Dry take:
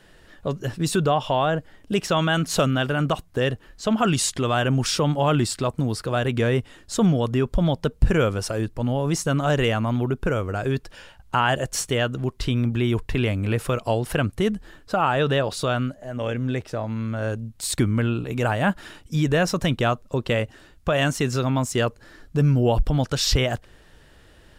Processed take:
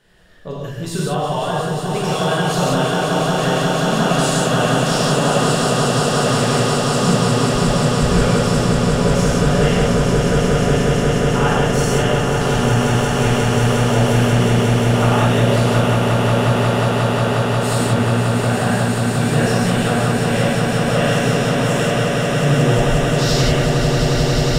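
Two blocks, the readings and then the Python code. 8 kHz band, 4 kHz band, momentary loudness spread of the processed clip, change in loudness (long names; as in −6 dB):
+7.0 dB, +7.5 dB, 3 LU, +7.0 dB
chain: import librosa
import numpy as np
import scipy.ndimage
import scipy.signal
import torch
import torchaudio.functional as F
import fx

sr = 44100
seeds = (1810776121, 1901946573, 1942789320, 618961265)

y = fx.echo_swell(x, sr, ms=179, loudest=8, wet_db=-6.0)
y = fx.rev_gated(y, sr, seeds[0], gate_ms=220, shape='flat', drr_db=-6.0)
y = y * librosa.db_to_amplitude(-6.5)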